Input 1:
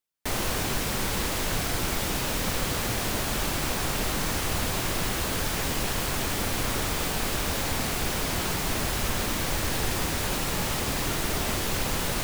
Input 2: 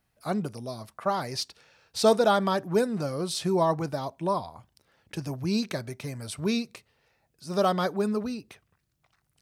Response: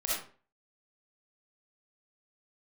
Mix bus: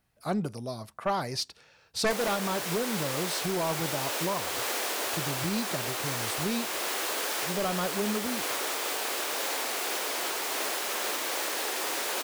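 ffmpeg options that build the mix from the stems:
-filter_complex "[0:a]highpass=f=370:w=0.5412,highpass=f=370:w=1.3066,adelay=1850,volume=0.944[s0];[1:a]aeval=exprs='0.335*sin(PI/2*2.51*val(0)/0.335)':c=same,volume=0.266[s1];[s0][s1]amix=inputs=2:normalize=0,alimiter=limit=0.1:level=0:latency=1:release=343"

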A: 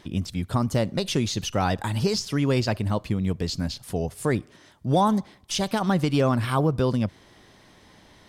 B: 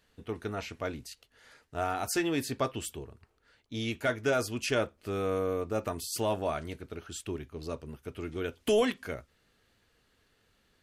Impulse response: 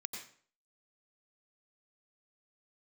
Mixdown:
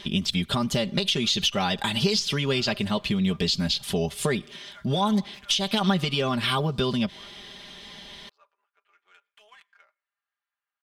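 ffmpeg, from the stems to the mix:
-filter_complex "[0:a]equalizer=f=3300:t=o:w=1.1:g=14.5,alimiter=limit=0.266:level=0:latency=1:release=369,acompressor=threshold=0.0631:ratio=6,volume=1.26[s0];[1:a]alimiter=limit=0.0708:level=0:latency=1:release=412,highpass=f=940:w=0.5412,highpass=f=940:w=1.3066,adynamicsmooth=sensitivity=7:basefreq=1900,adelay=700,volume=0.2,asplit=2[s1][s2];[s2]volume=0.0708[s3];[2:a]atrim=start_sample=2205[s4];[s3][s4]afir=irnorm=-1:irlink=0[s5];[s0][s1][s5]amix=inputs=3:normalize=0,aecho=1:1:5:0.7"

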